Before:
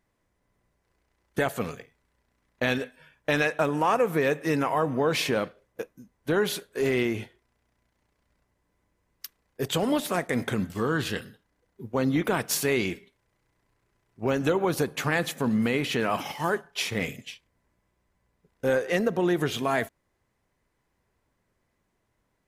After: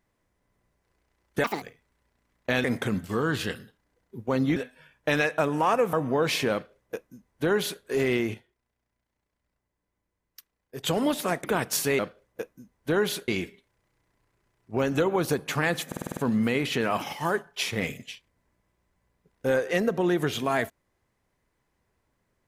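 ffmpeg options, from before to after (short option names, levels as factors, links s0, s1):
-filter_complex "[0:a]asplit=17[s0][s1][s2][s3][s4][s5][s6][s7][s8][s9][s10][s11][s12][s13][s14][s15][s16];[s0]atrim=end=1.444[s17];[s1]atrim=start=1.44:end=1.75,asetpts=PTS-STARTPTS,asetrate=75852,aresample=44100,atrim=end_sample=7948,asetpts=PTS-STARTPTS[s18];[s2]atrim=start=1.746:end=2.772[s19];[s3]atrim=start=10.298:end=12.222[s20];[s4]atrim=start=2.768:end=4.142[s21];[s5]atrim=start=4.788:end=7.202[s22];[s6]atrim=start=7.198:end=9.692,asetpts=PTS-STARTPTS,volume=0.355[s23];[s7]atrim=start=9.688:end=10.302[s24];[s8]atrim=start=12.218:end=12.772[s25];[s9]atrim=start=5.388:end=6.682[s26];[s10]atrim=start=12.768:end=15.412[s27];[s11]atrim=start=15.358:end=15.412[s28];[s12]atrim=start=15.358:end=15.412[s29];[s13]atrim=start=15.358:end=15.412[s30];[s14]atrim=start=15.358:end=15.412[s31];[s15]atrim=start=15.358:end=15.412[s32];[s16]atrim=start=15.358[s33];[s17][s18]acrossfade=d=0.004:c1=hsin:c2=hsin[s34];[s34][s19]acrossfade=d=0.004:c1=hsin:c2=hsin[s35];[s35][s20]acrossfade=d=0.004:c1=hsin:c2=hsin[s36];[s36][s21]acrossfade=d=0.004:c1=hsin:c2=hsin[s37];[s37][s22]acrossfade=d=0.004:c1=hsin:c2=hsin[s38];[s38][s23]acrossfade=d=0.004:c1=hsin:c2=hsin[s39];[s39][s24]acrossfade=d=0.004:c1=hsin:c2=hsin[s40];[s40][s25]acrossfade=d=0.004:c1=hsin:c2=hsin[s41];[s41][s26]acrossfade=d=0.004:c1=hsin:c2=hsin[s42];[s42][s27]acrossfade=d=0.004:c1=hsin:c2=hsin[s43];[s43][s28]acrossfade=d=0.004:c1=hsin:c2=hsin[s44];[s44][s29]acrossfade=d=0.004:c1=hsin:c2=hsin[s45];[s45][s30]acrossfade=d=0.004:c1=hsin:c2=hsin[s46];[s46][s31]acrossfade=d=0.004:c1=hsin:c2=hsin[s47];[s47][s32]acrossfade=d=0.004:c1=hsin:c2=hsin[s48];[s48][s33]acrossfade=d=0.004:c1=hsin:c2=hsin"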